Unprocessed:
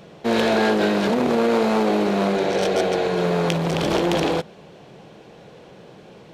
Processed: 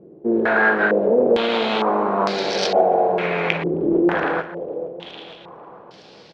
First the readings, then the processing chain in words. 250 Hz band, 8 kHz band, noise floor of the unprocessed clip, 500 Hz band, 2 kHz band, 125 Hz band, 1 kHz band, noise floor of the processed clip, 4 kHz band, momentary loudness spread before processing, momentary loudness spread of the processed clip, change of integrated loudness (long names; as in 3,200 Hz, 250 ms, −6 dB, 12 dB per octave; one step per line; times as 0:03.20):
−1.5 dB, −5.0 dB, −46 dBFS, +1.5 dB, +6.5 dB, −6.0 dB, +3.5 dB, −46 dBFS, +0.5 dB, 3 LU, 13 LU, +1.0 dB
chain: low-shelf EQ 290 Hz −9.5 dB
on a send: repeating echo 456 ms, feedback 52%, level −13 dB
on the sum: low-pass on a step sequencer 2.2 Hz 350–4,900 Hz